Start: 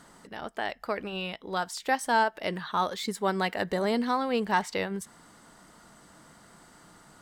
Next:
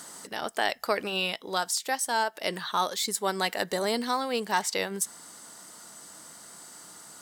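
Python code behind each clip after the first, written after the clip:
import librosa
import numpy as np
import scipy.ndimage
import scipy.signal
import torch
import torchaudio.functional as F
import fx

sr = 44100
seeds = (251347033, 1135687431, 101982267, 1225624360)

y = scipy.signal.sosfilt(scipy.signal.butter(2, 87.0, 'highpass', fs=sr, output='sos'), x)
y = fx.bass_treble(y, sr, bass_db=-7, treble_db=13)
y = fx.rider(y, sr, range_db=5, speed_s=0.5)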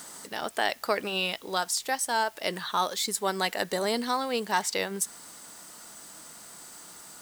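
y = fx.dmg_noise_colour(x, sr, seeds[0], colour='white', level_db=-55.0)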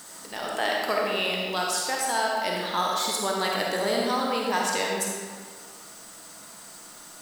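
y = fx.rev_freeverb(x, sr, rt60_s=1.7, hf_ratio=0.75, predelay_ms=10, drr_db=-2.5)
y = F.gain(torch.from_numpy(y), -1.5).numpy()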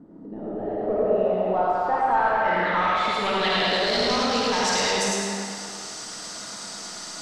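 y = 10.0 ** (-29.5 / 20.0) * np.tanh(x / 10.0 ** (-29.5 / 20.0))
y = fx.filter_sweep_lowpass(y, sr, from_hz=290.0, to_hz=5600.0, start_s=0.27, end_s=4.2, q=2.4)
y = fx.echo_feedback(y, sr, ms=106, feedback_pct=53, wet_db=-4.5)
y = F.gain(torch.from_numpy(y), 6.5).numpy()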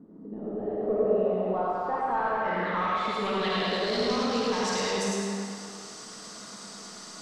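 y = fx.small_body(x, sr, hz=(210.0, 420.0, 1100.0), ring_ms=30, db=8)
y = F.gain(torch.from_numpy(y), -8.0).numpy()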